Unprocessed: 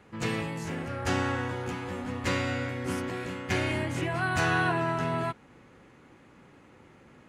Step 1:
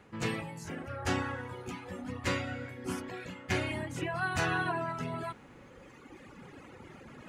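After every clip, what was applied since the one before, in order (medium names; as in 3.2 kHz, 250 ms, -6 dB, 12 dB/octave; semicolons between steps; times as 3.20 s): reverb removal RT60 1.9 s; reverse; upward compressor, threshold -37 dBFS; reverse; trim -2 dB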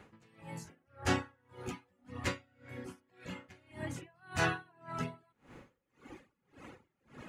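logarithmic tremolo 1.8 Hz, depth 35 dB; trim +1.5 dB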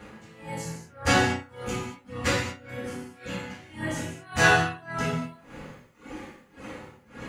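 reverse; upward compressor, threshold -52 dBFS; reverse; gated-style reverb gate 260 ms falling, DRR -6.5 dB; trim +5.5 dB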